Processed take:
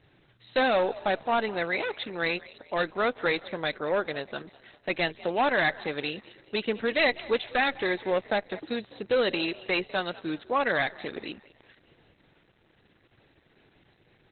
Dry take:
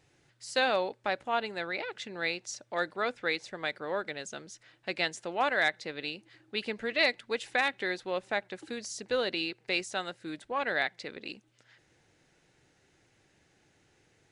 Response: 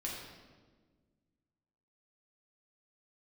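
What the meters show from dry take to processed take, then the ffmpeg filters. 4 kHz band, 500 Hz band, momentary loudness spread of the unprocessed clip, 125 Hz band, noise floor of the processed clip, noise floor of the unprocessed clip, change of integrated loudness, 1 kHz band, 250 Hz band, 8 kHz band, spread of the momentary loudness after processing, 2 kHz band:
+1.5 dB, +6.0 dB, 13 LU, +8.0 dB, -65 dBFS, -69 dBFS, +4.0 dB, +4.5 dB, +7.0 dB, under -35 dB, 11 LU, +2.5 dB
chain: -filter_complex "[0:a]firequalizer=gain_entry='entry(330,0);entry(2400,-2);entry(6800,6)':delay=0.05:min_phase=1,asoftclip=type=hard:threshold=-26.5dB,asplit=5[a][b][c][d][e];[b]adelay=199,afreqshift=50,volume=-19dB[f];[c]adelay=398,afreqshift=100,volume=-25.4dB[g];[d]adelay=597,afreqshift=150,volume=-31.8dB[h];[e]adelay=796,afreqshift=200,volume=-38.1dB[i];[a][f][g][h][i]amix=inputs=5:normalize=0,aresample=32000,aresample=44100,volume=8dB" -ar 48000 -c:a libopus -b:a 8k

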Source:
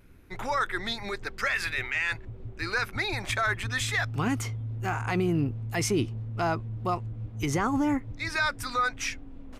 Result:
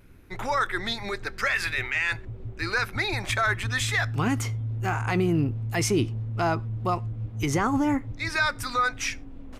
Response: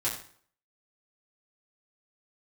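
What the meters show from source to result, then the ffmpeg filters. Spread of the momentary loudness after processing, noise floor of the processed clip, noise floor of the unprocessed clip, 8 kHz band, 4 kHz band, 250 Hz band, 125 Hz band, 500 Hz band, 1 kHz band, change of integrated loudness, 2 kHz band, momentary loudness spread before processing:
7 LU, -42 dBFS, -44 dBFS, +2.5 dB, +2.5 dB, +2.5 dB, +3.5 dB, +2.5 dB, +2.5 dB, +2.5 dB, +2.5 dB, 7 LU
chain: -filter_complex "[0:a]asplit=2[a][b];[1:a]atrim=start_sample=2205,afade=t=out:st=0.17:d=0.01,atrim=end_sample=7938[c];[b][c]afir=irnorm=-1:irlink=0,volume=-24.5dB[d];[a][d]amix=inputs=2:normalize=0,volume=2dB"

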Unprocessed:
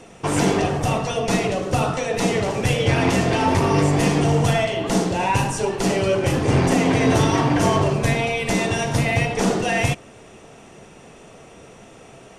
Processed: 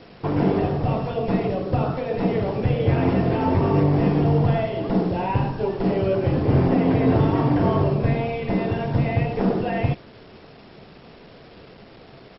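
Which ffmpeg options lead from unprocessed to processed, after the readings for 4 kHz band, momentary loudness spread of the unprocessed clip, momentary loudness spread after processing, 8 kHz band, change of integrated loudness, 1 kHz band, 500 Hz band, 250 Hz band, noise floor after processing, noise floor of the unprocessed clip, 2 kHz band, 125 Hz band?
-12.5 dB, 4 LU, 6 LU, under -40 dB, -1.5 dB, -4.5 dB, -1.5 dB, 0.0 dB, -46 dBFS, -45 dBFS, -10.0 dB, +0.5 dB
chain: -filter_complex "[0:a]acrossover=split=2800[a][b];[b]acompressor=threshold=-35dB:ratio=4:attack=1:release=60[c];[a][c]amix=inputs=2:normalize=0,tiltshelf=f=1.1k:g=6.5,aresample=16000,acrusher=bits=6:mix=0:aa=0.000001,aresample=44100,volume=-6dB" -ar 22050 -c:a mp2 -b:a 32k

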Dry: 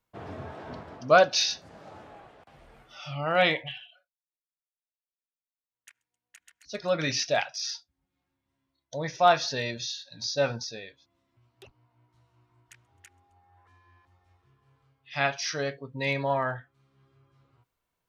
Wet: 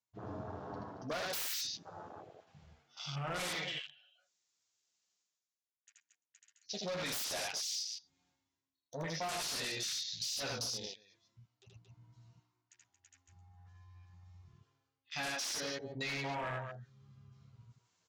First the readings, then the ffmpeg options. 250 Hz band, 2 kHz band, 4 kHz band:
-9.0 dB, -11.5 dB, -6.5 dB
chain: -filter_complex "[0:a]flanger=delay=9.3:depth=3.2:regen=-9:speed=0.18:shape=triangular,asoftclip=type=hard:threshold=-27dB,bass=f=250:g=5,treble=f=4k:g=14,bandreject=f=580:w=18,aresample=16000,aresample=44100,highpass=95,asplit=2[a][b];[b]aecho=0:1:78.72|227.4:0.794|0.282[c];[a][c]amix=inputs=2:normalize=0,aeval=exprs='0.0473*(abs(mod(val(0)/0.0473+3,4)-2)-1)':c=same,lowshelf=f=290:g=-5.5,areverse,acompressor=mode=upward:threshold=-42dB:ratio=2.5,areverse,afwtdn=0.00891,acompressor=threshold=-35dB:ratio=6,volume=-1dB"

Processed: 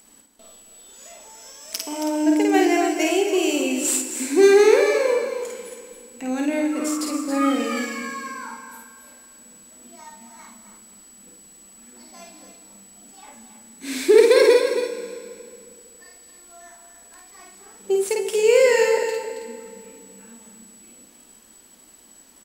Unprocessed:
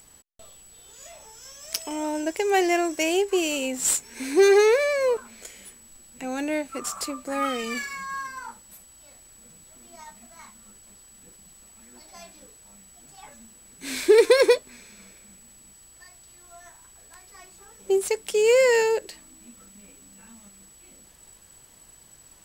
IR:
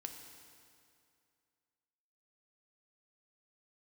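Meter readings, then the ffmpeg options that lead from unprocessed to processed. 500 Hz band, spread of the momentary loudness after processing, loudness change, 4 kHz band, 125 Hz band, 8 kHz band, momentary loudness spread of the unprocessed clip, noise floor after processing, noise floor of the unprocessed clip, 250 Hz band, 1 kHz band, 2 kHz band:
+3.5 dB, 20 LU, +3.0 dB, +2.0 dB, n/a, +2.0 dB, 16 LU, -51 dBFS, -53 dBFS, +7.5 dB, +2.0 dB, +2.0 dB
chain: -filter_complex "[0:a]lowshelf=f=170:t=q:w=3:g=-8.5,aecho=1:1:273:0.355,asplit=2[a][b];[1:a]atrim=start_sample=2205,adelay=51[c];[b][c]afir=irnorm=-1:irlink=0,volume=2dB[d];[a][d]amix=inputs=2:normalize=0,volume=-1dB"

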